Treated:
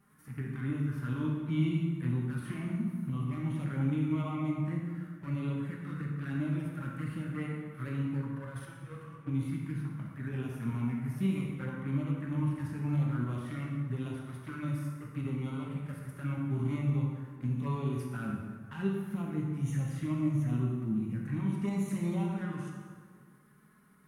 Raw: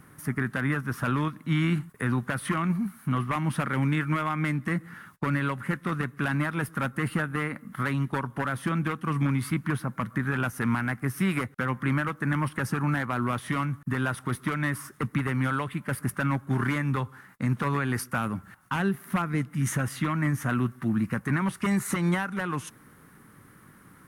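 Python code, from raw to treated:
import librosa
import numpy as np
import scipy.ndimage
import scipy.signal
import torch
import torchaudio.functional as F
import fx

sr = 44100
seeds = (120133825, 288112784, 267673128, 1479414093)

y = fx.over_compress(x, sr, threshold_db=-33.0, ratio=-0.5, at=(8.32, 9.26), fade=0.02)
y = fx.tremolo_shape(y, sr, shape='saw_up', hz=7.1, depth_pct=50)
y = fx.hpss(y, sr, part='percussive', gain_db=-13)
y = fx.env_flanger(y, sr, rest_ms=5.4, full_db=-28.0)
y = fx.rev_plate(y, sr, seeds[0], rt60_s=1.8, hf_ratio=0.65, predelay_ms=0, drr_db=-1.5)
y = F.gain(torch.from_numpy(y), -5.0).numpy()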